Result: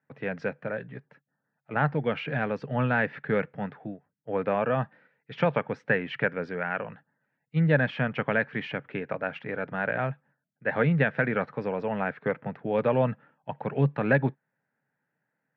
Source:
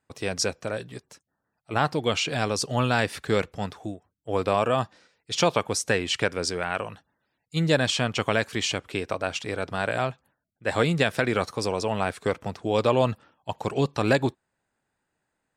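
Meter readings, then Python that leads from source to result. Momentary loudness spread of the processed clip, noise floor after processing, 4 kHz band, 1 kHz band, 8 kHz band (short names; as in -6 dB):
12 LU, -82 dBFS, -16.0 dB, -4.0 dB, under -35 dB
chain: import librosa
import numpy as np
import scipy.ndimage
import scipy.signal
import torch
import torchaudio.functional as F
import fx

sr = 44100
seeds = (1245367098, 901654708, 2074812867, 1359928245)

y = fx.cabinet(x, sr, low_hz=140.0, low_slope=24, high_hz=2100.0, hz=(140.0, 350.0, 700.0, 1100.0, 1700.0), db=(8, -9, -4, -8, 4))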